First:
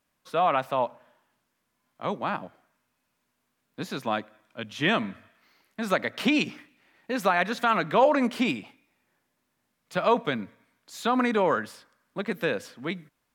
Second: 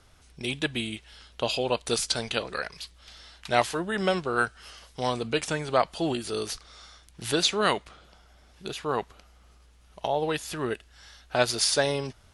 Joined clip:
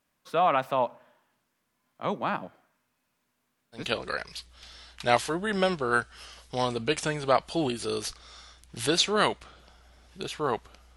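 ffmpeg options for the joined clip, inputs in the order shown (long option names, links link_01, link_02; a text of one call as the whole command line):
ffmpeg -i cue0.wav -i cue1.wav -filter_complex "[0:a]apad=whole_dur=10.96,atrim=end=10.96,atrim=end=3.92,asetpts=PTS-STARTPTS[link_01];[1:a]atrim=start=2.17:end=9.41,asetpts=PTS-STARTPTS[link_02];[link_01][link_02]acrossfade=duration=0.2:curve1=tri:curve2=tri" out.wav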